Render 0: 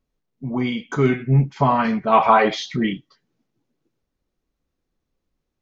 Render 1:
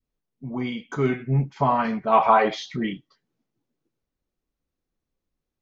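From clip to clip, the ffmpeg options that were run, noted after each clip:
-af "adynamicequalizer=threshold=0.0501:dfrequency=750:dqfactor=0.76:tfrequency=750:tqfactor=0.76:attack=5:release=100:ratio=0.375:range=2:mode=boostabove:tftype=bell,volume=0.501"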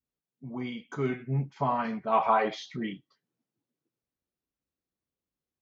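-af "highpass=73,volume=0.447"

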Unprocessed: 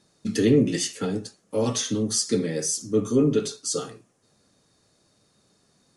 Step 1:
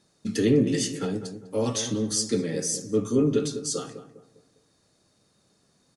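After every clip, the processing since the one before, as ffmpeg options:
-filter_complex "[0:a]asplit=2[s0][s1];[s1]adelay=201,lowpass=f=980:p=1,volume=0.335,asplit=2[s2][s3];[s3]adelay=201,lowpass=f=980:p=1,volume=0.41,asplit=2[s4][s5];[s5]adelay=201,lowpass=f=980:p=1,volume=0.41,asplit=2[s6][s7];[s7]adelay=201,lowpass=f=980:p=1,volume=0.41[s8];[s0][s2][s4][s6][s8]amix=inputs=5:normalize=0,volume=0.794"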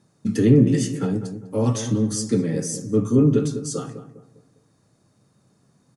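-af "equalizer=f=125:t=o:w=1:g=11,equalizer=f=250:t=o:w=1:g=4,equalizer=f=1000:t=o:w=1:g=4,equalizer=f=4000:t=o:w=1:g=-6"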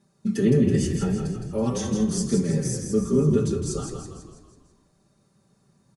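-filter_complex "[0:a]aecho=1:1:5.1:0.83,asplit=2[s0][s1];[s1]asplit=6[s2][s3][s4][s5][s6][s7];[s2]adelay=164,afreqshift=-34,volume=0.501[s8];[s3]adelay=328,afreqshift=-68,volume=0.257[s9];[s4]adelay=492,afreqshift=-102,volume=0.13[s10];[s5]adelay=656,afreqshift=-136,volume=0.0668[s11];[s6]adelay=820,afreqshift=-170,volume=0.0339[s12];[s7]adelay=984,afreqshift=-204,volume=0.0174[s13];[s8][s9][s10][s11][s12][s13]amix=inputs=6:normalize=0[s14];[s0][s14]amix=inputs=2:normalize=0,volume=0.531"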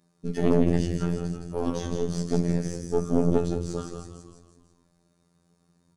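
-filter_complex "[0:a]aeval=exprs='0.422*(cos(1*acos(clip(val(0)/0.422,-1,1)))-cos(1*PI/2))+0.0944*(cos(4*acos(clip(val(0)/0.422,-1,1)))-cos(4*PI/2))':c=same,acrossover=split=5300[s0][s1];[s1]acompressor=threshold=0.00398:ratio=4:attack=1:release=60[s2];[s0][s2]amix=inputs=2:normalize=0,afftfilt=real='hypot(re,im)*cos(PI*b)':imag='0':win_size=2048:overlap=0.75"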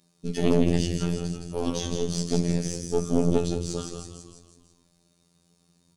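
-af "highshelf=f=2200:t=q:w=1.5:g=7"

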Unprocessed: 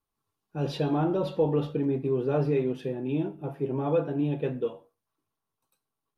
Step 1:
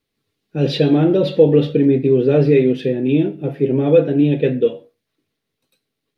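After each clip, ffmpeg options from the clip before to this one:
-af "equalizer=f=125:t=o:w=1:g=6,equalizer=f=250:t=o:w=1:g=8,equalizer=f=500:t=o:w=1:g=10,equalizer=f=1000:t=o:w=1:g=-11,equalizer=f=2000:t=o:w=1:g=12,equalizer=f=4000:t=o:w=1:g=10,volume=1.5"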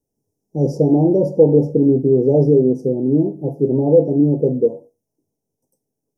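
-af "asuperstop=centerf=2300:order=20:qfactor=0.51"

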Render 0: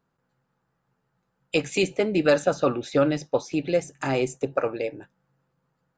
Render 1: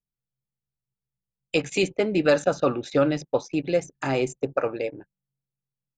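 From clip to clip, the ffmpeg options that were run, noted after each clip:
-af "anlmdn=0.251"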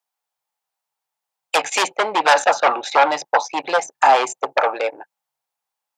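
-af "aeval=exprs='0.398*sin(PI/2*3.16*val(0)/0.398)':c=same,highpass=f=810:t=q:w=4.1,volume=0.708"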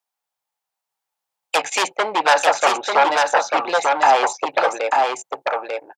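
-af "aecho=1:1:893:0.668,volume=0.891"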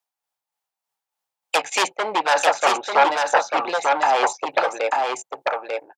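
-af "tremolo=f=3.3:d=0.47"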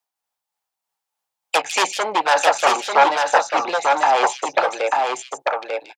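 -filter_complex "[0:a]acrossover=split=470|1100|2500[s0][s1][s2][s3];[s1]crystalizer=i=6.5:c=0[s4];[s3]aecho=1:1:155:0.596[s5];[s0][s4][s2][s5]amix=inputs=4:normalize=0,volume=1.12"

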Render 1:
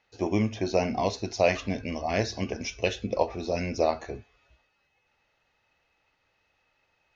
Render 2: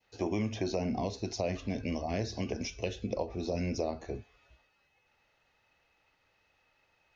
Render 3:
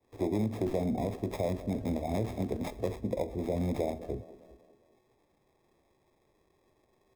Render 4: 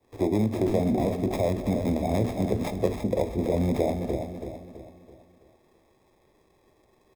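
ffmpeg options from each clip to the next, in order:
-filter_complex "[0:a]acrossover=split=430[s0][s1];[s0]alimiter=level_in=1.26:limit=0.0631:level=0:latency=1,volume=0.794[s2];[s1]acompressor=threshold=0.0158:ratio=4[s3];[s2][s3]amix=inputs=2:normalize=0,adynamicequalizer=threshold=0.00282:dfrequency=1500:dqfactor=0.86:tfrequency=1500:tqfactor=0.86:attack=5:release=100:ratio=0.375:range=2:mode=cutabove:tftype=bell"
-filter_complex "[0:a]acrossover=split=150|910[s0][s1][s2];[s1]aecho=1:1:201|402|603|804|1005:0.158|0.084|0.0445|0.0236|0.0125[s3];[s2]acrusher=samples=30:mix=1:aa=0.000001[s4];[s0][s3][s4]amix=inputs=3:normalize=0,volume=1.26"
-af "aecho=1:1:330|660|990|1320|1650:0.422|0.177|0.0744|0.0312|0.0131,volume=2"

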